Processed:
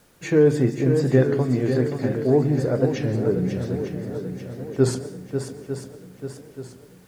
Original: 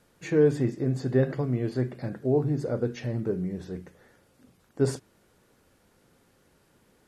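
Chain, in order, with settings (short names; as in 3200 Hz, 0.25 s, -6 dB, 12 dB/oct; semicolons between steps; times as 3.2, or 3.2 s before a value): high shelf 8800 Hz +3.5 dB; on a send: swung echo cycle 0.89 s, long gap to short 1.5:1, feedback 47%, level -8 dB; on the sum: plate-style reverb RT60 0.63 s, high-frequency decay 0.85×, pre-delay 0.115 s, DRR 16 dB; in parallel at -1 dB: negative-ratio compressor -19 dBFS; on the sum: bit-crush 10-bit; record warp 33 1/3 rpm, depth 100 cents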